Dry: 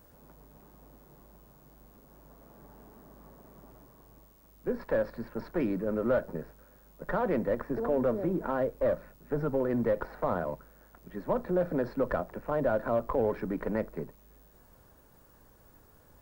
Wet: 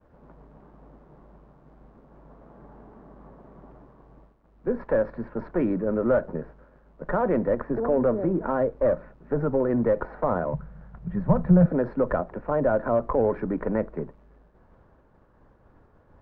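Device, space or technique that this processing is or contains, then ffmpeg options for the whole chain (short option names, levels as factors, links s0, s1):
hearing-loss simulation: -filter_complex "[0:a]asettb=1/sr,asplit=3[s0][s1][s2];[s0]atrim=end=10.534[s3];[s1]atrim=start=10.53:end=11.66,asetpts=PTS-STARTPTS,afade=t=in:d=0.004:c=qsin,afade=t=out:st=1.126:d=0.004:c=qsin,lowshelf=f=220:t=q:w=3:g=9.5[s4];[s2]atrim=start=11.656[s5];[s3][s4]acrossfade=d=0.004:c1=hsin:c2=qsin[s6];[s6][s5]acrossfade=d=0.004:c1=qsin:c2=hsin,lowpass=1700,agate=range=0.0224:threshold=0.00158:ratio=3:detection=peak,volume=1.88"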